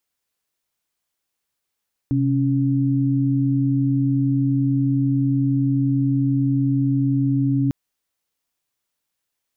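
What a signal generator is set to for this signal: chord C3/C#4 sine, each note -19 dBFS 5.60 s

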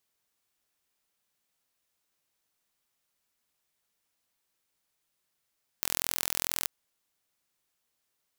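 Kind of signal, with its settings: pulse train 42.3 per s, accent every 0, -2 dBFS 0.83 s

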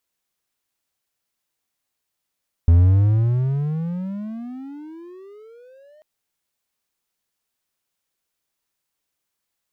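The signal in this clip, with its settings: gliding synth tone triangle, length 3.34 s, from 82.4 Hz, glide +35 st, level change -39 dB, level -6.5 dB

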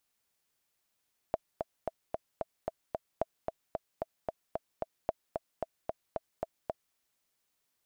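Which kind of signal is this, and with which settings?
metronome 224 bpm, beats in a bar 7, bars 3, 651 Hz, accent 4.5 dB -15.5 dBFS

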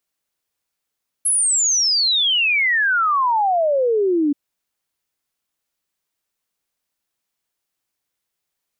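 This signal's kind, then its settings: log sweep 11 kHz -> 280 Hz 3.08 s -14.5 dBFS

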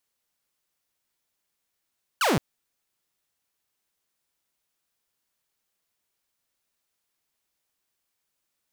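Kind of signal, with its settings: laser zap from 1.6 kHz, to 120 Hz, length 0.17 s saw, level -17 dB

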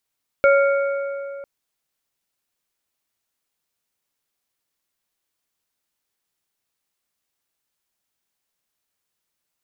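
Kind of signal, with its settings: metal hit plate, length 1.00 s, lowest mode 557 Hz, modes 3, decay 2.80 s, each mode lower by 5.5 dB, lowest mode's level -11 dB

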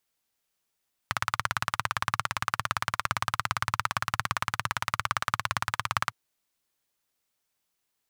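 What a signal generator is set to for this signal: single-cylinder engine model, steady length 5.01 s, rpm 2100, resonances 110/1200 Hz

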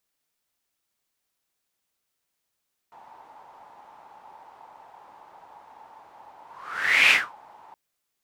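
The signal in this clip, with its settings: whoosh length 4.82 s, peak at 4.19 s, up 0.71 s, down 0.24 s, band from 870 Hz, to 2.4 kHz, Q 7, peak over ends 33.5 dB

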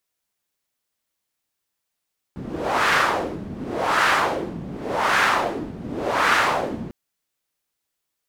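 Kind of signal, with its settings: wind-like swept noise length 4.55 s, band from 190 Hz, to 1.5 kHz, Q 1.8, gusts 4, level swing 15 dB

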